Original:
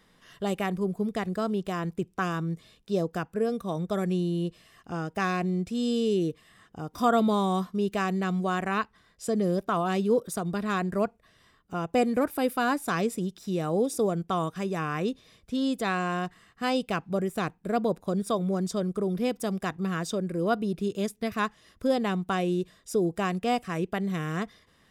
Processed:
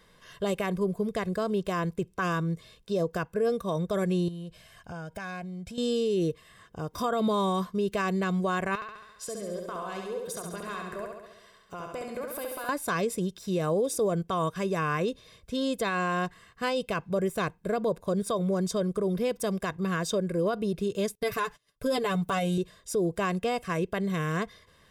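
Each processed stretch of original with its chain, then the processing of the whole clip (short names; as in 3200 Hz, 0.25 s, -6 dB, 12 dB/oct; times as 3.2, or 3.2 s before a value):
4.28–5.78 comb 1.3 ms, depth 50% + compressor 4:1, threshold -38 dBFS
8.75–12.69 low shelf 340 Hz -10 dB + compressor, threshold -37 dBFS + flutter echo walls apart 11.7 m, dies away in 1 s
21.15–22.58 gate -55 dBFS, range -25 dB + high shelf 9400 Hz +9 dB + comb 6.9 ms, depth 82%
whole clip: comb 1.9 ms, depth 46%; limiter -21.5 dBFS; gain +2 dB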